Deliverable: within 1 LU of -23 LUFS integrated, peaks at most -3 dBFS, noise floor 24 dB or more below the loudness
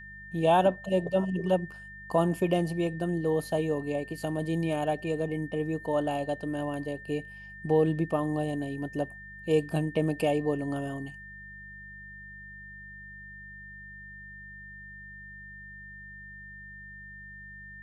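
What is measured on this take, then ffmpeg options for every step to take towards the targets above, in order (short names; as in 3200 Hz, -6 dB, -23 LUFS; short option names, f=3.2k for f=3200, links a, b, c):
hum 50 Hz; harmonics up to 200 Hz; hum level -50 dBFS; steady tone 1800 Hz; tone level -44 dBFS; loudness -29.5 LUFS; peak -12.0 dBFS; loudness target -23.0 LUFS
-> -af "bandreject=f=50:t=h:w=4,bandreject=f=100:t=h:w=4,bandreject=f=150:t=h:w=4,bandreject=f=200:t=h:w=4"
-af "bandreject=f=1.8k:w=30"
-af "volume=6.5dB"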